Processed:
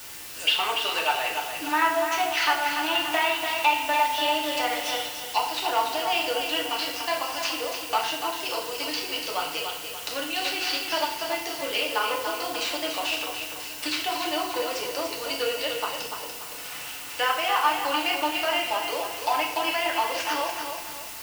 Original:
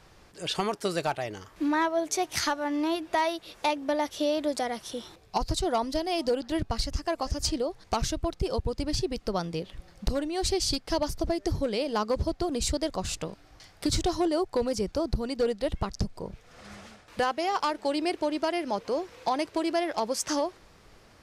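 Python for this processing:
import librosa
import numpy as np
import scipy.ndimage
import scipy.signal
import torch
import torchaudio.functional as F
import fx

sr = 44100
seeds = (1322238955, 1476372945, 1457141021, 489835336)

y = fx.cvsd(x, sr, bps=64000)
y = scipy.signal.sosfilt(scipy.signal.butter(2, 950.0, 'highpass', fs=sr, output='sos'), y)
y = fx.env_lowpass_down(y, sr, base_hz=2900.0, full_db=-32.0)
y = fx.peak_eq(y, sr, hz=2800.0, db=12.0, octaves=0.33)
y = fx.quant_dither(y, sr, seeds[0], bits=8, dither='triangular')
y = fx.echo_feedback(y, sr, ms=290, feedback_pct=41, wet_db=-7)
y = fx.rev_fdn(y, sr, rt60_s=0.69, lf_ratio=1.0, hf_ratio=0.95, size_ms=20.0, drr_db=-1.5)
y = fx.band_squash(y, sr, depth_pct=40, at=(2.95, 5.02))
y = y * librosa.db_to_amplitude(4.0)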